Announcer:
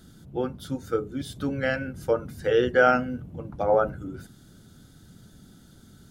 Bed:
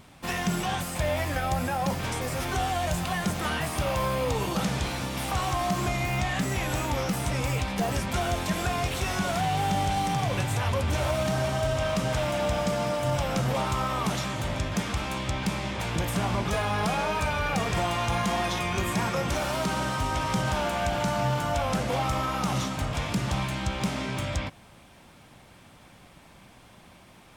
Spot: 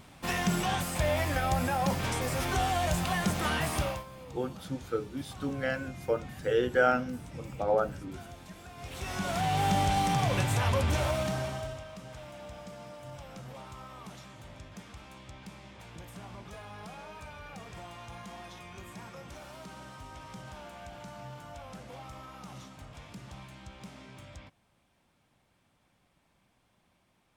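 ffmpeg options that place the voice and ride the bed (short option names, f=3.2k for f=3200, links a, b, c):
-filter_complex "[0:a]adelay=4000,volume=-5.5dB[a];[1:a]volume=19dB,afade=t=out:st=3.77:d=0.27:silence=0.105925,afade=t=in:st=8.76:d=0.92:silence=0.1,afade=t=out:st=10.82:d=1.03:silence=0.125893[b];[a][b]amix=inputs=2:normalize=0"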